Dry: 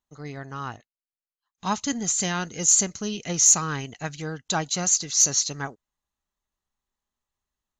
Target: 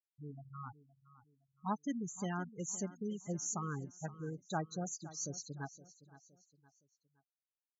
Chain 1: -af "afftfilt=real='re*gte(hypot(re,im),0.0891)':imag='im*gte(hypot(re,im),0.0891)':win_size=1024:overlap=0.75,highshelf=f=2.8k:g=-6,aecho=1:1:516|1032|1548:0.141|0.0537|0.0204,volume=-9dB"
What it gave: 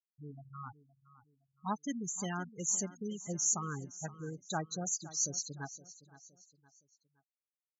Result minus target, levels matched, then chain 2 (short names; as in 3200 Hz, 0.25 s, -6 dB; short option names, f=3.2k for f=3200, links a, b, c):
2000 Hz band -2.5 dB
-af "afftfilt=real='re*gte(hypot(re,im),0.0891)':imag='im*gte(hypot(re,im),0.0891)':win_size=1024:overlap=0.75,highshelf=f=2.8k:g=-17,aecho=1:1:516|1032|1548:0.141|0.0537|0.0204,volume=-9dB"